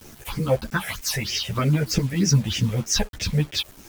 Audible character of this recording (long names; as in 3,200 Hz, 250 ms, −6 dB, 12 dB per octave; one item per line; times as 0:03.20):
phaser sweep stages 6, 3.2 Hz, lowest notch 290–1,100 Hz
a quantiser's noise floor 8 bits, dither none
a shimmering, thickened sound